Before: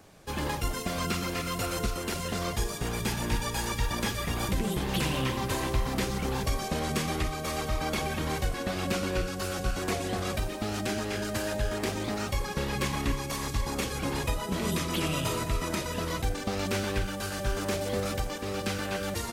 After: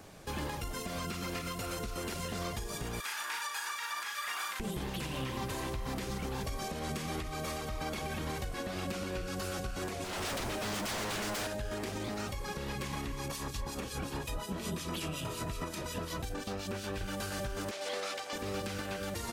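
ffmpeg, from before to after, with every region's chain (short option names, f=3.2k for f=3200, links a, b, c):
-filter_complex "[0:a]asettb=1/sr,asplit=3[a][b][c];[a]atrim=end=3.004[d];[b]atrim=start=3:end=4.6,asetpts=PTS-STARTPTS,afade=t=in:d=0.004:c=qsin,afade=t=out:st=1.596:d=0.004:c=qsin,highpass=f=1.3k:t=q:w=2.3,asplit=2[e][f];[f]adelay=37,volume=-4.5dB[g];[e][g]amix=inputs=2:normalize=0,atrim=end_sample=70560[h];[c]atrim=start=4.596[i];[d][h]acrossfade=d=0.004:c1=hsin:c2=qsin[j];[j][i]acrossfade=d=0.004:c1=qsin:c2=hsin,asettb=1/sr,asplit=3[k][l][m];[k]atrim=end=10.044[n];[l]atrim=start=10.04:end=11.47,asetpts=PTS-STARTPTS,afade=t=in:d=0.004:c=qsin,afade=t=out:st=1.426:d=0.004:c=qsin,acrossover=split=8000[o][p];[p]acompressor=threshold=-51dB:ratio=4:attack=1:release=60[q];[o][q]amix=inputs=2:normalize=0,bandreject=f=50:t=h:w=6,bandreject=f=100:t=h:w=6,bandreject=f=150:t=h:w=6,aeval=exprs='0.0211*(abs(mod(val(0)/0.0211+3,4)-2)-1)':c=same[r];[m]atrim=start=11.466[s];[n][r]acrossfade=d=0.004:c1=hsin:c2=qsin[t];[t][s]acrossfade=d=0.004:c1=qsin:c2=hsin,asettb=1/sr,asplit=3[u][v][w];[u]atrim=end=13.284[x];[v]atrim=start=13.28:end=17.01,asetpts=PTS-STARTPTS,afade=t=in:d=0.004:c=qsin,afade=t=out:st=3.726:d=0.004:c=qsin,bandreject=f=2.1k:w=12,acrossover=split=2300[y][z];[y]aeval=exprs='val(0)*(1-0.7/2+0.7/2*cos(2*PI*5.5*n/s))':c=same[aa];[z]aeval=exprs='val(0)*(1-0.7/2-0.7/2*cos(2*PI*5.5*n/s))':c=same[ab];[aa][ab]amix=inputs=2:normalize=0[ac];[w]atrim=start=17.006[ad];[x][ac]acrossfade=d=0.004:c1=hsin:c2=qsin[ae];[ae][ad]acrossfade=d=0.004:c1=qsin:c2=hsin,asettb=1/sr,asplit=3[af][ag][ah];[af]atrim=end=17.714[ai];[ag]atrim=start=17.71:end=18.33,asetpts=PTS-STARTPTS,afade=t=in:d=0.004:c=qsin,afade=t=out:st=0.616:d=0.004:c=qsin,highpass=570,lowpass=3.9k,aemphasis=mode=production:type=75fm[aj];[ah]atrim=start=18.326[ak];[ai][aj]acrossfade=d=0.004:c1=hsin:c2=qsin[al];[al][ak]acrossfade=d=0.004:c1=qsin:c2=hsin,acompressor=threshold=-29dB:ratio=6,alimiter=level_in=6dB:limit=-24dB:level=0:latency=1:release=355,volume=-6dB,volume=2.5dB"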